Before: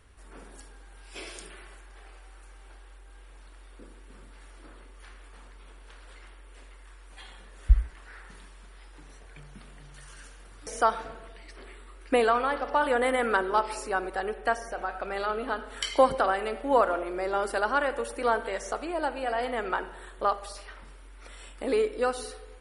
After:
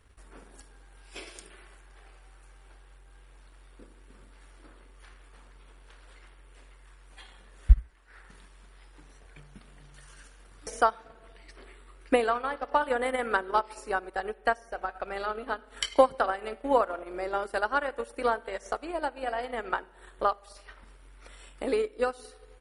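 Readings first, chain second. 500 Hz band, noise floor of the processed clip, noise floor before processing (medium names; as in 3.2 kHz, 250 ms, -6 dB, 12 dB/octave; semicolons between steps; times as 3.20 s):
-2.0 dB, -55 dBFS, -49 dBFS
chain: transient shaper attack +6 dB, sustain -9 dB; trim -4 dB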